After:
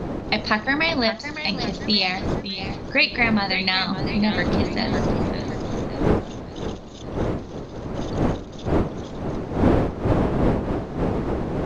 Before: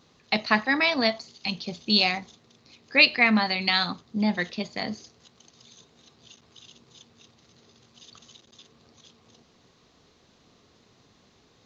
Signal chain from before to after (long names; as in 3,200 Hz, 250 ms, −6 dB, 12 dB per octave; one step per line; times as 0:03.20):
wind on the microphone 400 Hz −27 dBFS
downward compressor 2 to 1, threshold −26 dBFS, peak gain reduction 9 dB
feedback echo with a swinging delay time 563 ms, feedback 40%, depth 126 cents, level −10.5 dB
level +6 dB